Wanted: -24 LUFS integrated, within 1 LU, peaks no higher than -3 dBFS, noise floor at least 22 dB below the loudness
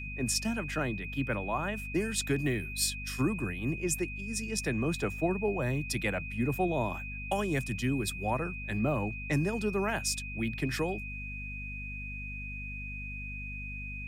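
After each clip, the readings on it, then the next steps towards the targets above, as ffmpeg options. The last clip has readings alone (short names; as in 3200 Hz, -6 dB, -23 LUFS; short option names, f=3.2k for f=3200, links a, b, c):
hum 50 Hz; harmonics up to 250 Hz; hum level -39 dBFS; steady tone 2500 Hz; tone level -40 dBFS; loudness -32.5 LUFS; peak -16.5 dBFS; loudness target -24.0 LUFS
-> -af "bandreject=f=50:t=h:w=4,bandreject=f=100:t=h:w=4,bandreject=f=150:t=h:w=4,bandreject=f=200:t=h:w=4,bandreject=f=250:t=h:w=4"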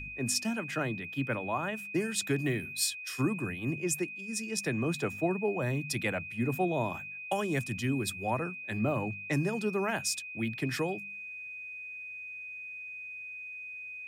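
hum none; steady tone 2500 Hz; tone level -40 dBFS
-> -af "bandreject=f=2.5k:w=30"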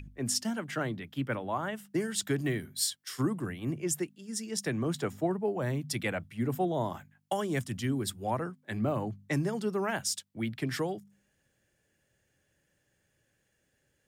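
steady tone none; loudness -33.0 LUFS; peak -17.0 dBFS; loudness target -24.0 LUFS
-> -af "volume=9dB"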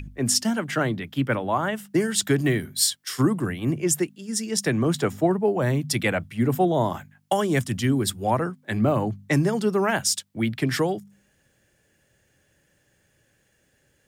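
loudness -24.0 LUFS; peak -8.0 dBFS; noise floor -66 dBFS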